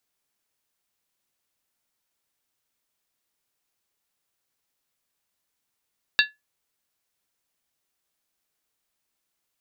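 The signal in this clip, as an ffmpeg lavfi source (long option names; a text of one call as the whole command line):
ffmpeg -f lavfi -i "aevalsrc='0.2*pow(10,-3*t/0.19)*sin(2*PI*1710*t)+0.158*pow(10,-3*t/0.15)*sin(2*PI*2725.7*t)+0.126*pow(10,-3*t/0.13)*sin(2*PI*3652.6*t)+0.1*pow(10,-3*t/0.125)*sin(2*PI*3926.2*t)+0.0794*pow(10,-3*t/0.117)*sin(2*PI*4536.6*t)':duration=0.63:sample_rate=44100" out.wav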